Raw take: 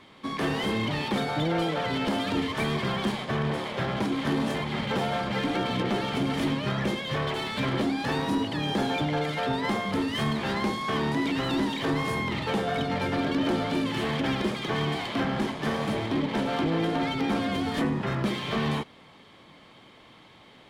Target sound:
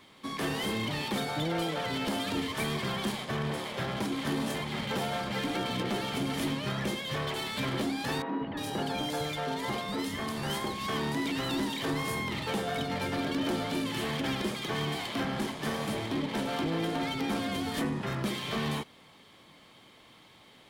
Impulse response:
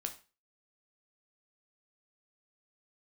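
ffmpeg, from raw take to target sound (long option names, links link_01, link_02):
-filter_complex "[0:a]aemphasis=mode=production:type=50kf,asettb=1/sr,asplit=3[link_01][link_02][link_03];[link_01]atrim=end=8.224[link_04];[link_02]atrim=start=8.22:end=10.87,asetpts=PTS-STARTPTS,afade=type=in:duration=0.004:curve=qsin,afade=type=out:start_time=2.646:duration=0.004:curve=qsin,acrossover=split=190|2300[link_05][link_06][link_07];[link_05]adelay=190[link_08];[link_07]adelay=350[link_09];[link_08][link_06][link_09]amix=inputs=3:normalize=0,atrim=end_sample=116865[link_10];[link_03]atrim=start=10.866[link_11];[link_04][link_10]acrossfade=duration=0.004:curve1=hsin:curve2=qsin[link_12];[link_12][link_11]acrossfade=duration=0.004:curve1=qsin:curve2=hsin,volume=-5dB"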